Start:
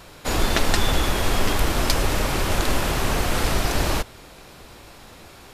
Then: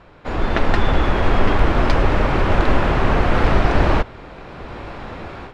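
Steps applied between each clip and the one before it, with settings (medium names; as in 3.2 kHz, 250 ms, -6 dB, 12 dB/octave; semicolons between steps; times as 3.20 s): low-pass 2 kHz 12 dB/octave; level rider gain up to 15 dB; trim -1 dB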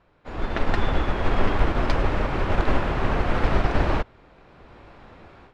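upward expansion 1.5:1, over -31 dBFS; trim -4 dB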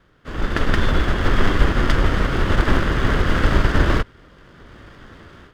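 comb filter that takes the minimum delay 0.61 ms; trim +6 dB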